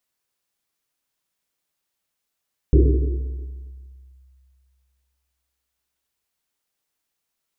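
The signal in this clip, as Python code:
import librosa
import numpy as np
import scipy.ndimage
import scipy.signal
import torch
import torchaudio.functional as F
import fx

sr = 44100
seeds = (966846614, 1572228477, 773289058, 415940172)

y = fx.risset_drum(sr, seeds[0], length_s=3.93, hz=65.0, decay_s=2.43, noise_hz=350.0, noise_width_hz=170.0, noise_pct=30)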